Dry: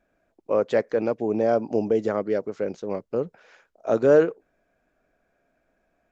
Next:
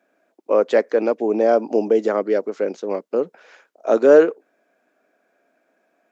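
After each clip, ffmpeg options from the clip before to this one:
ffmpeg -i in.wav -af "highpass=frequency=240:width=0.5412,highpass=frequency=240:width=1.3066,volume=5.5dB" out.wav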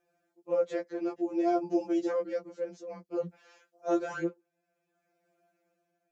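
ffmpeg -i in.wav -af "tremolo=f=0.56:d=0.55,bass=frequency=250:gain=13,treble=frequency=4000:gain=6,afftfilt=real='re*2.83*eq(mod(b,8),0)':imag='im*2.83*eq(mod(b,8),0)':win_size=2048:overlap=0.75,volume=-8dB" out.wav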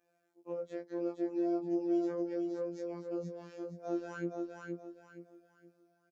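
ffmpeg -i in.wav -filter_complex "[0:a]acrossover=split=300[link_01][link_02];[link_02]acompressor=threshold=-41dB:ratio=6[link_03];[link_01][link_03]amix=inputs=2:normalize=0,afftfilt=real='hypot(re,im)*cos(PI*b)':imag='0':win_size=2048:overlap=0.75,asplit=2[link_04][link_05];[link_05]aecho=0:1:470|940|1410|1880:0.631|0.202|0.0646|0.0207[link_06];[link_04][link_06]amix=inputs=2:normalize=0" out.wav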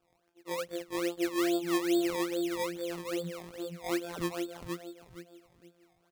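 ffmpeg -i in.wav -af "acrusher=samples=21:mix=1:aa=0.000001:lfo=1:lforange=21:lforate=2.4,volume=3.5dB" out.wav

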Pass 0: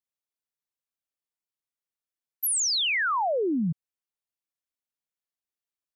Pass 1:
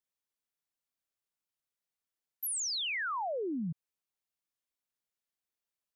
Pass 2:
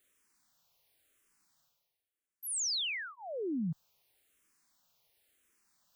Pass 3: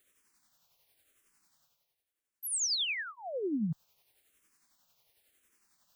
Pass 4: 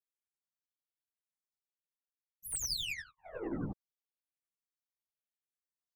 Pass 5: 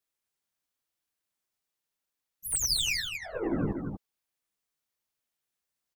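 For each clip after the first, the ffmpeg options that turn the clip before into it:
ffmpeg -i in.wav -af "alimiter=level_in=7.5dB:limit=-24dB:level=0:latency=1,volume=-7.5dB" out.wav
ffmpeg -i in.wav -filter_complex "[0:a]areverse,acompressor=mode=upward:threshold=-55dB:ratio=2.5,areverse,asplit=2[link_01][link_02];[link_02]afreqshift=-0.94[link_03];[link_01][link_03]amix=inputs=2:normalize=1,volume=1.5dB" out.wav
ffmpeg -i in.wav -af "tremolo=f=11:d=0.41,volume=4dB" out.wav
ffmpeg -i in.wav -af "aeval=exprs='0.0501*(cos(1*acos(clip(val(0)/0.0501,-1,1)))-cos(1*PI/2))+0.0112*(cos(2*acos(clip(val(0)/0.0501,-1,1)))-cos(2*PI/2))+0.00112*(cos(3*acos(clip(val(0)/0.0501,-1,1)))-cos(3*PI/2))+0.000562*(cos(6*acos(clip(val(0)/0.0501,-1,1)))-cos(6*PI/2))+0.00631*(cos(7*acos(clip(val(0)/0.0501,-1,1)))-cos(7*PI/2))':channel_layout=same,afftfilt=real='hypot(re,im)*cos(2*PI*random(0))':imag='hypot(re,im)*sin(2*PI*random(1))':win_size=512:overlap=0.75" out.wav
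ffmpeg -i in.wav -af "aecho=1:1:237:0.501,volume=8dB" out.wav

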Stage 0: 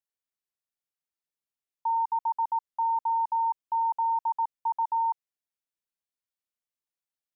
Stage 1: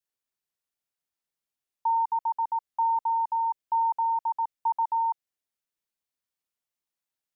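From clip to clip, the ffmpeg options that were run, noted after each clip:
ffmpeg -i in.wav -af "adynamicequalizer=threshold=0.0158:dfrequency=1000:dqfactor=1.8:tfrequency=1000:tqfactor=1.8:attack=5:release=100:ratio=0.375:range=2:mode=cutabove:tftype=bell,volume=2.5dB" out.wav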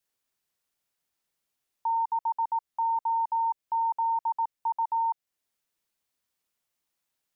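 ffmpeg -i in.wav -af "alimiter=level_in=6dB:limit=-24dB:level=0:latency=1:release=359,volume=-6dB,volume=7dB" out.wav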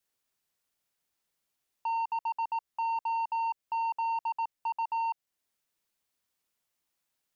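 ffmpeg -i in.wav -af "asoftclip=type=tanh:threshold=-27.5dB" out.wav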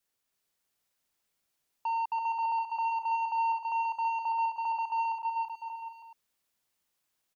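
ffmpeg -i in.wav -af "aecho=1:1:330|577.5|763.1|902.3|1007:0.631|0.398|0.251|0.158|0.1" out.wav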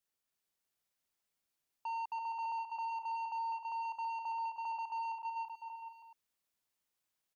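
ffmpeg -i in.wav -af "asoftclip=type=tanh:threshold=-26.5dB,volume=-6.5dB" out.wav

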